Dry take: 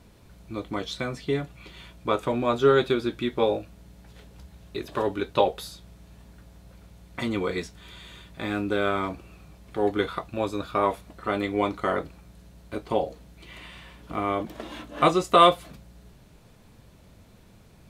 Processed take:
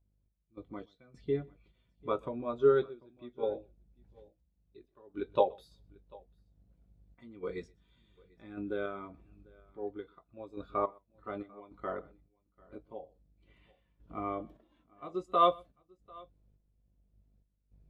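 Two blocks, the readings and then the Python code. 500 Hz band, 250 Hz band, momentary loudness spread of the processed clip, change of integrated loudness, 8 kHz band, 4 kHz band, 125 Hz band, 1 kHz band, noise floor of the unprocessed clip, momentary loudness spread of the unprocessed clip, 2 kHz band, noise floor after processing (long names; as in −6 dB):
−8.5 dB, −13.0 dB, 25 LU, −8.5 dB, below −25 dB, −17.5 dB, −13.5 dB, −10.0 dB, −53 dBFS, 22 LU, −16.5 dB, −76 dBFS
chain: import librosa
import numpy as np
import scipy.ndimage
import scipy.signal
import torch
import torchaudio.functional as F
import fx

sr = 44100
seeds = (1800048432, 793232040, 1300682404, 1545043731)

p1 = fx.dmg_buzz(x, sr, base_hz=50.0, harmonics=15, level_db=-47.0, tilt_db=-7, odd_only=False)
p2 = fx.tremolo_random(p1, sr, seeds[0], hz=3.5, depth_pct=85)
p3 = p2 + fx.echo_multitap(p2, sr, ms=(126, 744), db=(-18.5, -17.0), dry=0)
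p4 = fx.spectral_expand(p3, sr, expansion=1.5)
y = F.gain(torch.from_numpy(p4), -5.0).numpy()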